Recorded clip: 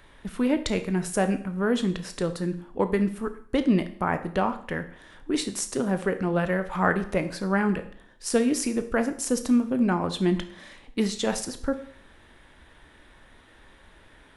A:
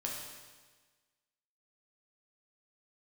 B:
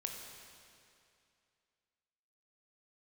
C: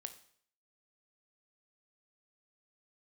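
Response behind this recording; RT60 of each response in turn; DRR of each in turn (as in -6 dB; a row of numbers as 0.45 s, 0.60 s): C; 1.4 s, 2.5 s, 0.60 s; -3.0 dB, 1.5 dB, 8.5 dB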